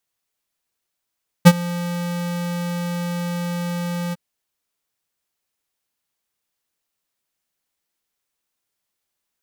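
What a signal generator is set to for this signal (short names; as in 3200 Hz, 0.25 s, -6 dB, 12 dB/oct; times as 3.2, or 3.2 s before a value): ADSR square 174 Hz, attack 21 ms, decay 48 ms, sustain -21 dB, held 2.68 s, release 25 ms -4 dBFS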